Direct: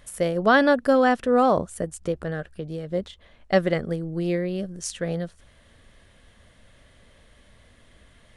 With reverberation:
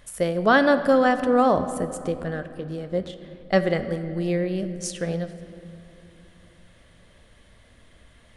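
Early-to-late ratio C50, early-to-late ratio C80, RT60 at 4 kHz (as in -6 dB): 11.0 dB, 12.0 dB, 1.7 s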